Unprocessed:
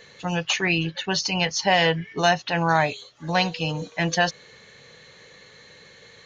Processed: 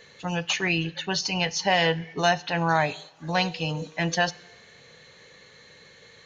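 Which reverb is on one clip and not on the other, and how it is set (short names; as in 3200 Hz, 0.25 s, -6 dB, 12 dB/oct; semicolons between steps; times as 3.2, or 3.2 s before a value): two-slope reverb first 0.76 s, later 2.7 s, DRR 18.5 dB; gain -2.5 dB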